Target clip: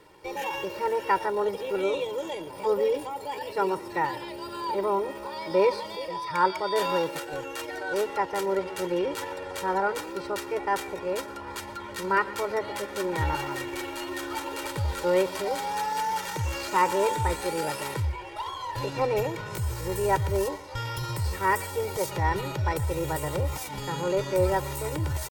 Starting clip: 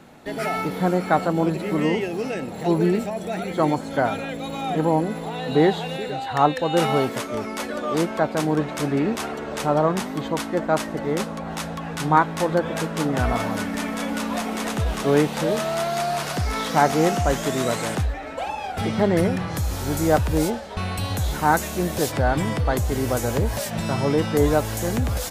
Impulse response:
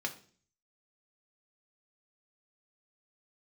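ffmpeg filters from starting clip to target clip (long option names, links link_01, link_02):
-filter_complex "[0:a]aecho=1:1:2.7:0.96,asetrate=55563,aresample=44100,atempo=0.793701,asplit=2[link_01][link_02];[1:a]atrim=start_sample=2205,adelay=118[link_03];[link_02][link_03]afir=irnorm=-1:irlink=0,volume=-20dB[link_04];[link_01][link_04]amix=inputs=2:normalize=0,volume=-8.5dB"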